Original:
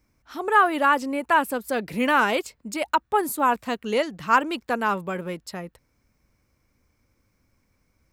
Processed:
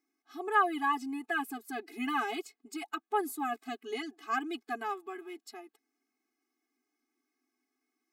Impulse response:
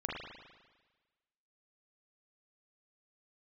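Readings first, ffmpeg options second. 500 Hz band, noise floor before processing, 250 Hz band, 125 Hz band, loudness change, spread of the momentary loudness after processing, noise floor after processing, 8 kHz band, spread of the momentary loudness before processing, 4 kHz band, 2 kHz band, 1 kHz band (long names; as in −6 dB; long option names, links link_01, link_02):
−13.0 dB, −70 dBFS, −9.5 dB, below −30 dB, −11.0 dB, 15 LU, below −85 dBFS, −11.5 dB, 14 LU, −10.5 dB, −11.0 dB, −11.0 dB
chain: -af "afftfilt=real='re*eq(mod(floor(b*sr/1024/220),2),1)':imag='im*eq(mod(floor(b*sr/1024/220),2),1)':win_size=1024:overlap=0.75,volume=-8dB"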